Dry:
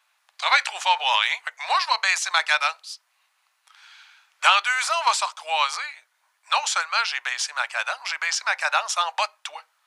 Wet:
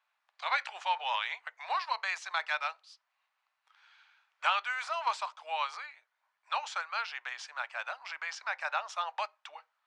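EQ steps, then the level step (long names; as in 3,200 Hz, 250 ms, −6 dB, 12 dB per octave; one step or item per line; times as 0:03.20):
head-to-tape spacing loss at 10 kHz 21 dB
−8.0 dB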